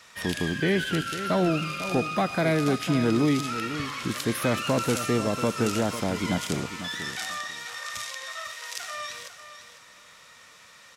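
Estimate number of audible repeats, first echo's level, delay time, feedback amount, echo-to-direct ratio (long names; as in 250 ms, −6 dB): 2, −11.5 dB, 498 ms, 18%, −11.5 dB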